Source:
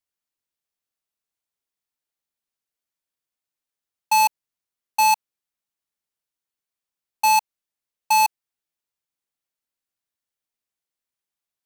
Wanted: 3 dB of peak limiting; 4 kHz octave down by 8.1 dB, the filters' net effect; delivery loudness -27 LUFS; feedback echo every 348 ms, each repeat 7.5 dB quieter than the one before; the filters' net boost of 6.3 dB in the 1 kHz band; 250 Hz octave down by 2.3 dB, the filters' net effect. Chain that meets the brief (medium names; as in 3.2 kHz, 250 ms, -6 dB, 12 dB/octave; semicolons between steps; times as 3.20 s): peaking EQ 250 Hz -5 dB; peaking EQ 1 kHz +8 dB; peaking EQ 4 kHz -9 dB; peak limiter -9.5 dBFS; feedback delay 348 ms, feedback 42%, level -7.5 dB; trim -7 dB